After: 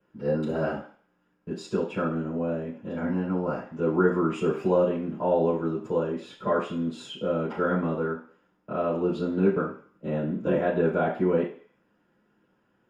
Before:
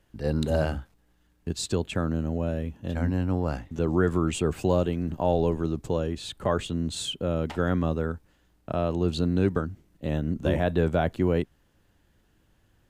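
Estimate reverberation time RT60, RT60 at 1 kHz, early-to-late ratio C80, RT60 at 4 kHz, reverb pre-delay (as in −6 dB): 0.45 s, 0.50 s, 11.0 dB, 0.55 s, 3 ms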